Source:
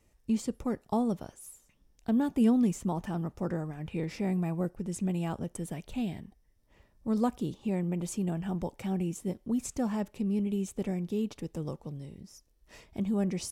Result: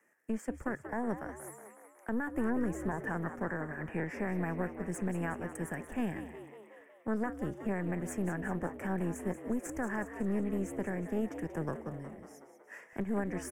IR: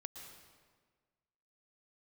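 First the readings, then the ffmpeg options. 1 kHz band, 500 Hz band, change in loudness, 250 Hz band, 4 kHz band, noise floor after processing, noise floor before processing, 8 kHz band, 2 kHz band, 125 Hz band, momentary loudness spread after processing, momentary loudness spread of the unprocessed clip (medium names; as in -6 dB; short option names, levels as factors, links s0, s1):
-0.5 dB, -1.0 dB, -4.5 dB, -5.5 dB, under -10 dB, -60 dBFS, -67 dBFS, -5.5 dB, +9.0 dB, -5.0 dB, 13 LU, 10 LU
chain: -filter_complex "[0:a]aeval=exprs='0.168*(cos(1*acos(clip(val(0)/0.168,-1,1)))-cos(1*PI/2))+0.0376*(cos(4*acos(clip(val(0)/0.168,-1,1)))-cos(4*PI/2))':c=same,acrossover=split=210|470|5800[s0][s1][s2][s3];[s0]aeval=exprs='sgn(val(0))*max(abs(val(0))-0.00251,0)':c=same[s4];[s2]lowpass=f=1700:t=q:w=7.6[s5];[s4][s1][s5][s3]amix=inputs=4:normalize=0,alimiter=limit=0.0631:level=0:latency=1:release=306,asplit=8[s6][s7][s8][s9][s10][s11][s12][s13];[s7]adelay=184,afreqshift=71,volume=0.282[s14];[s8]adelay=368,afreqshift=142,volume=0.17[s15];[s9]adelay=552,afreqshift=213,volume=0.101[s16];[s10]adelay=736,afreqshift=284,volume=0.061[s17];[s11]adelay=920,afreqshift=355,volume=0.0367[s18];[s12]adelay=1104,afreqshift=426,volume=0.0219[s19];[s13]adelay=1288,afreqshift=497,volume=0.0132[s20];[s6][s14][s15][s16][s17][s18][s19][s20]amix=inputs=8:normalize=0,volume=0.794"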